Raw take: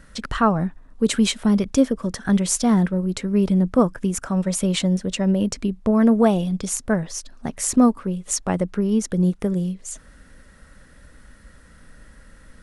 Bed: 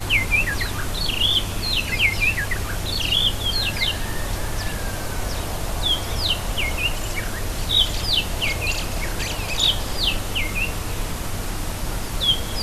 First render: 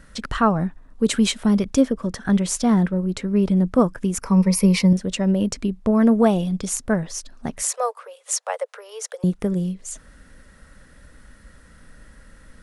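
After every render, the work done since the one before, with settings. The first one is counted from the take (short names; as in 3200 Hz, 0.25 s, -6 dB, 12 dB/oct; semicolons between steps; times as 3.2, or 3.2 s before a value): 1.81–3.57 high shelf 5300 Hz -5 dB; 4.2–4.93 ripple EQ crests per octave 0.86, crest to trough 14 dB; 7.62–9.24 steep high-pass 460 Hz 96 dB/oct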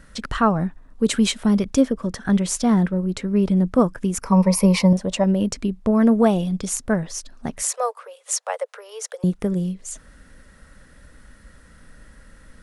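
4.32–5.24 band shelf 780 Hz +9.5 dB 1.2 oct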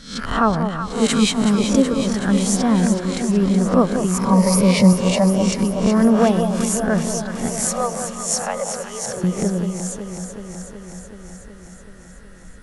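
spectral swells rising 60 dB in 0.47 s; on a send: echo with dull and thin repeats by turns 0.187 s, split 990 Hz, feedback 84%, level -6.5 dB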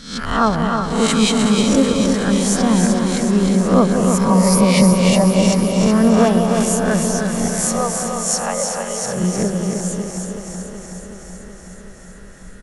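spectral swells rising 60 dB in 0.52 s; feedback echo 0.308 s, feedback 47%, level -5.5 dB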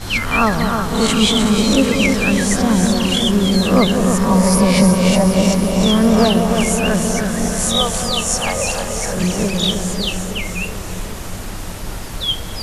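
add bed -1 dB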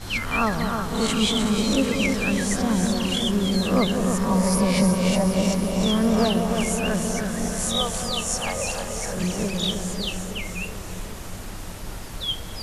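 gain -7.5 dB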